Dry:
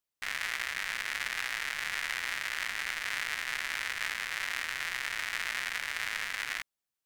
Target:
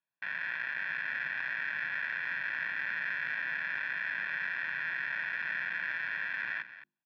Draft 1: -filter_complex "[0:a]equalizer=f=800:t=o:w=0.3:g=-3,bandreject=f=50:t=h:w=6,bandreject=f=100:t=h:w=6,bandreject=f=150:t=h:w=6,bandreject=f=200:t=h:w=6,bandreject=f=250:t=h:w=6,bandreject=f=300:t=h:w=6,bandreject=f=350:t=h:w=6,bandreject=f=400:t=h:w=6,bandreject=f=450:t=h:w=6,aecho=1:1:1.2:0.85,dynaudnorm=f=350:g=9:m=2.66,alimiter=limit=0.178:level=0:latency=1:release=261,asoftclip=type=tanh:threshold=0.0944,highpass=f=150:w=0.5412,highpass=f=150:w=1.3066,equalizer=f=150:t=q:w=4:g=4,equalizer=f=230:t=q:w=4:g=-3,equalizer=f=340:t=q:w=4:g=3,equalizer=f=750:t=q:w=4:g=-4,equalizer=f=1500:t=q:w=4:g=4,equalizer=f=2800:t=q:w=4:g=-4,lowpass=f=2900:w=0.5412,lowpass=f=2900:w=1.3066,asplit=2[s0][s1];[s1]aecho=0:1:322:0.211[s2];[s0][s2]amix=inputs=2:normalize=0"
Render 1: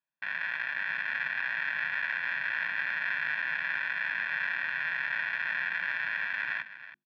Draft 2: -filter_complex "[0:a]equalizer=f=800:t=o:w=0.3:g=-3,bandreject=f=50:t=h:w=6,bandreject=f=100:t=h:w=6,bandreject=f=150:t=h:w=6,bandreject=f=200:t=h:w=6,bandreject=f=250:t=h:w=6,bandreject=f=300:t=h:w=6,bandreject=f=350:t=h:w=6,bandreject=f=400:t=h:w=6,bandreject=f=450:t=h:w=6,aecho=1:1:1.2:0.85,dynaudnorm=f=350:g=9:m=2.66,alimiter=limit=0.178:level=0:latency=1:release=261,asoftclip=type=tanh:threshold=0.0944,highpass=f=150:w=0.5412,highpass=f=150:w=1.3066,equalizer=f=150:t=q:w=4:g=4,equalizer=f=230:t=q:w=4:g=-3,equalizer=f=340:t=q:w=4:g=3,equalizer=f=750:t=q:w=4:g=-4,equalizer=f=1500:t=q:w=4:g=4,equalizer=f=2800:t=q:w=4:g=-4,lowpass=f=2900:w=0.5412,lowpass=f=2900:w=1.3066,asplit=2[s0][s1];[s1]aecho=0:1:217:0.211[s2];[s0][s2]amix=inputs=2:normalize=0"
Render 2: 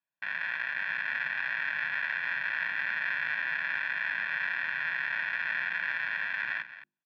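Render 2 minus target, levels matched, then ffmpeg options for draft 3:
saturation: distortion -8 dB
-filter_complex "[0:a]equalizer=f=800:t=o:w=0.3:g=-3,bandreject=f=50:t=h:w=6,bandreject=f=100:t=h:w=6,bandreject=f=150:t=h:w=6,bandreject=f=200:t=h:w=6,bandreject=f=250:t=h:w=6,bandreject=f=300:t=h:w=6,bandreject=f=350:t=h:w=6,bandreject=f=400:t=h:w=6,bandreject=f=450:t=h:w=6,aecho=1:1:1.2:0.85,dynaudnorm=f=350:g=9:m=2.66,alimiter=limit=0.178:level=0:latency=1:release=261,asoftclip=type=tanh:threshold=0.0398,highpass=f=150:w=0.5412,highpass=f=150:w=1.3066,equalizer=f=150:t=q:w=4:g=4,equalizer=f=230:t=q:w=4:g=-3,equalizer=f=340:t=q:w=4:g=3,equalizer=f=750:t=q:w=4:g=-4,equalizer=f=1500:t=q:w=4:g=4,equalizer=f=2800:t=q:w=4:g=-4,lowpass=f=2900:w=0.5412,lowpass=f=2900:w=1.3066,asplit=2[s0][s1];[s1]aecho=0:1:217:0.211[s2];[s0][s2]amix=inputs=2:normalize=0"

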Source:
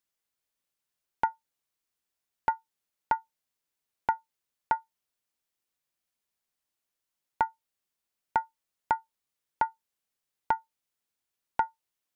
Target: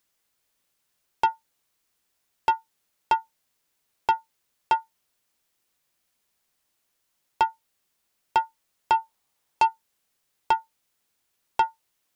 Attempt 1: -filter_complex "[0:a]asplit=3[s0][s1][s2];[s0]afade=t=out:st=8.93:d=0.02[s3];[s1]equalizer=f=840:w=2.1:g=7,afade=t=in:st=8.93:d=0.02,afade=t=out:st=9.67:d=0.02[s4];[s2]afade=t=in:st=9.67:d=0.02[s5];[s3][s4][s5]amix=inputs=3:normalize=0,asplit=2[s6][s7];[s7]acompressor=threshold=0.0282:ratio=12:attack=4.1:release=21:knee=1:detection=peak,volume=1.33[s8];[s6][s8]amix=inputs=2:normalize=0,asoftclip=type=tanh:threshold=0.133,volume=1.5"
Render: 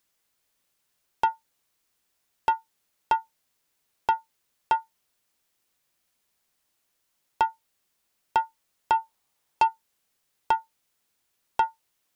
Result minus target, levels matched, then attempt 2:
compression: peak gain reduction +8 dB
-filter_complex "[0:a]asplit=3[s0][s1][s2];[s0]afade=t=out:st=8.93:d=0.02[s3];[s1]equalizer=f=840:w=2.1:g=7,afade=t=in:st=8.93:d=0.02,afade=t=out:st=9.67:d=0.02[s4];[s2]afade=t=in:st=9.67:d=0.02[s5];[s3][s4][s5]amix=inputs=3:normalize=0,asplit=2[s6][s7];[s7]acompressor=threshold=0.0794:ratio=12:attack=4.1:release=21:knee=1:detection=peak,volume=1.33[s8];[s6][s8]amix=inputs=2:normalize=0,asoftclip=type=tanh:threshold=0.133,volume=1.5"

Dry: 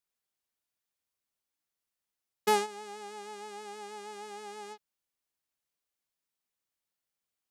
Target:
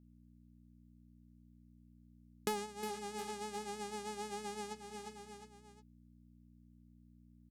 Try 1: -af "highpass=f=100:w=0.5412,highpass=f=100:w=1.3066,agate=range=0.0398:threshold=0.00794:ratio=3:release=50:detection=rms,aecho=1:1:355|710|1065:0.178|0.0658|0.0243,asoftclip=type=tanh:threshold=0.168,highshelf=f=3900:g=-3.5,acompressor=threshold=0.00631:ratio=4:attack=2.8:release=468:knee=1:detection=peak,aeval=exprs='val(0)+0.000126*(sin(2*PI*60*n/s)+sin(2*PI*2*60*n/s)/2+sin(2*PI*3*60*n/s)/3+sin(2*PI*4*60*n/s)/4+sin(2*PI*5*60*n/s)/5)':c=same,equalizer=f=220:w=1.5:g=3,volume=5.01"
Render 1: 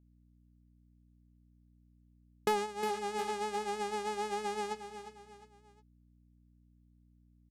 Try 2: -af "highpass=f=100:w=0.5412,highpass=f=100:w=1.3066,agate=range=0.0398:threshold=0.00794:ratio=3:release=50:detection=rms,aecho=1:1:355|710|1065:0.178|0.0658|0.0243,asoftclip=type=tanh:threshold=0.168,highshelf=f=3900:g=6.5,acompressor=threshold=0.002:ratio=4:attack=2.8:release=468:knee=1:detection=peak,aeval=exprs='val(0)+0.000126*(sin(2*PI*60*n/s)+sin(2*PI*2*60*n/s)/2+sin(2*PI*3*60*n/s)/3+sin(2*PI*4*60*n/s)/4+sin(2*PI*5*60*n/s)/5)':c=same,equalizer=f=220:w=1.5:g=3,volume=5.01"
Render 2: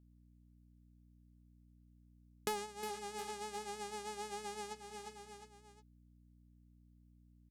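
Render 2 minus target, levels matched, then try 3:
250 Hz band -5.5 dB
-af "highpass=f=100:w=0.5412,highpass=f=100:w=1.3066,agate=range=0.0398:threshold=0.00794:ratio=3:release=50:detection=rms,aecho=1:1:355|710|1065:0.178|0.0658|0.0243,asoftclip=type=tanh:threshold=0.168,highshelf=f=3900:g=6.5,acompressor=threshold=0.002:ratio=4:attack=2.8:release=468:knee=1:detection=peak,aeval=exprs='val(0)+0.000126*(sin(2*PI*60*n/s)+sin(2*PI*2*60*n/s)/2+sin(2*PI*3*60*n/s)/3+sin(2*PI*4*60*n/s)/4+sin(2*PI*5*60*n/s)/5)':c=same,equalizer=f=220:w=1.5:g=10,volume=5.01"

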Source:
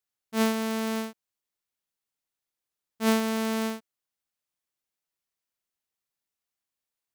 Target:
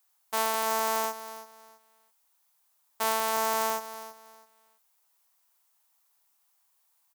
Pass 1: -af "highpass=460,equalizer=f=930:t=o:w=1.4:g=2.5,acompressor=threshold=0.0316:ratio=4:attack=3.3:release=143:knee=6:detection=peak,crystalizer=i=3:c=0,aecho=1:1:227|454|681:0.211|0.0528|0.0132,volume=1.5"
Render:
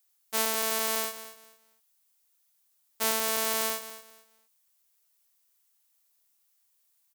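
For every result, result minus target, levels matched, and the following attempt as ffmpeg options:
1 kHz band -8.0 dB; echo 102 ms early
-af "highpass=460,equalizer=f=930:t=o:w=1.4:g=14.5,acompressor=threshold=0.0316:ratio=4:attack=3.3:release=143:knee=6:detection=peak,crystalizer=i=3:c=0,aecho=1:1:227|454|681:0.211|0.0528|0.0132,volume=1.5"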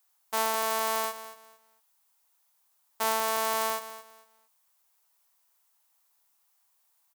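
echo 102 ms early
-af "highpass=460,equalizer=f=930:t=o:w=1.4:g=14.5,acompressor=threshold=0.0316:ratio=4:attack=3.3:release=143:knee=6:detection=peak,crystalizer=i=3:c=0,aecho=1:1:329|658|987:0.211|0.0528|0.0132,volume=1.5"

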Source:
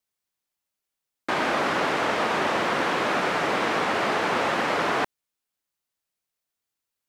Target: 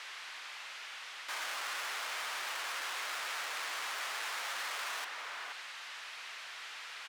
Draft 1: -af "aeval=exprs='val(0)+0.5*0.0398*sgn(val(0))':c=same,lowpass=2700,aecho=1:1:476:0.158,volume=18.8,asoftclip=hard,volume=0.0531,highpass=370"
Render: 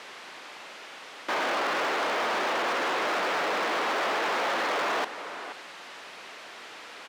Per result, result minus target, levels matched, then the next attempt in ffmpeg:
500 Hz band +11.0 dB; overload inside the chain: distortion -4 dB
-af "aeval=exprs='val(0)+0.5*0.0398*sgn(val(0))':c=same,lowpass=2700,aecho=1:1:476:0.158,volume=18.8,asoftclip=hard,volume=0.0531,highpass=1300"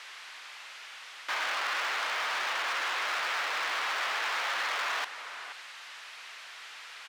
overload inside the chain: distortion -4 dB
-af "aeval=exprs='val(0)+0.5*0.0398*sgn(val(0))':c=same,lowpass=2700,aecho=1:1:476:0.158,volume=53.1,asoftclip=hard,volume=0.0188,highpass=1300"

